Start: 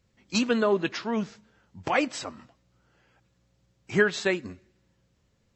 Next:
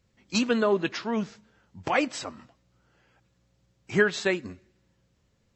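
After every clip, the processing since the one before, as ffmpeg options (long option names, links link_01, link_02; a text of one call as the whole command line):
ffmpeg -i in.wav -af anull out.wav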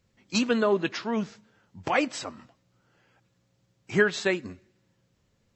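ffmpeg -i in.wav -af "equalizer=frequency=60:width_type=o:width=0.24:gain=-13.5" out.wav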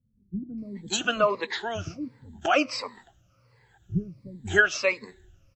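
ffmpeg -i in.wav -filter_complex "[0:a]afftfilt=real='re*pow(10,18/40*sin(2*PI*(0.93*log(max(b,1)*sr/1024/100)/log(2)-(-1.4)*(pts-256)/sr)))':imag='im*pow(10,18/40*sin(2*PI*(0.93*log(max(b,1)*sr/1024/100)/log(2)-(-1.4)*(pts-256)/sr)))':win_size=1024:overlap=0.75,acrossover=split=250[link_01][link_02];[link_02]adelay=580[link_03];[link_01][link_03]amix=inputs=2:normalize=0,asubboost=boost=6.5:cutoff=94" out.wav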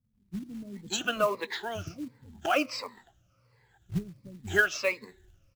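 ffmpeg -i in.wav -af "acrusher=bits=5:mode=log:mix=0:aa=0.000001,volume=-4dB" out.wav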